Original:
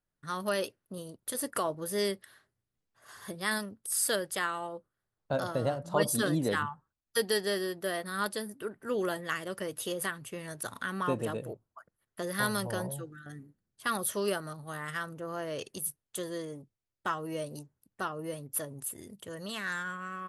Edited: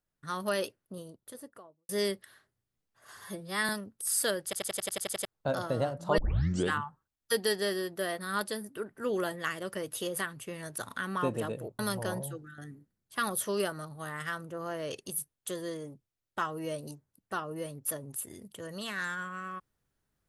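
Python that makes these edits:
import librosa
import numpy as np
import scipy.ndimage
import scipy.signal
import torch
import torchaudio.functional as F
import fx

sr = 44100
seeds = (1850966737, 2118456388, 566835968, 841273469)

y = fx.studio_fade_out(x, sr, start_s=0.65, length_s=1.24)
y = fx.edit(y, sr, fx.stretch_span(start_s=3.24, length_s=0.3, factor=1.5),
    fx.stutter_over(start_s=4.29, slice_s=0.09, count=9),
    fx.tape_start(start_s=6.03, length_s=0.54),
    fx.cut(start_s=11.64, length_s=0.83), tone=tone)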